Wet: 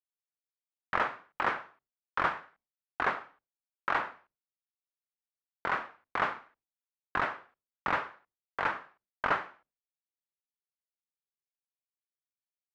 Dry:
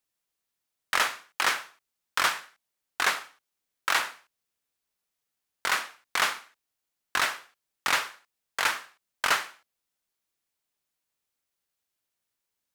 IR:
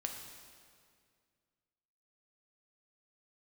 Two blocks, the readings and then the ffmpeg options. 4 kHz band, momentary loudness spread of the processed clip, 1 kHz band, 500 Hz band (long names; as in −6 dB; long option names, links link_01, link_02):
−17.0 dB, 12 LU, −1.5 dB, +1.5 dB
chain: -af "agate=range=-33dB:threshold=-57dB:ratio=3:detection=peak,lowpass=1300,lowshelf=frequency=300:gain=6.5"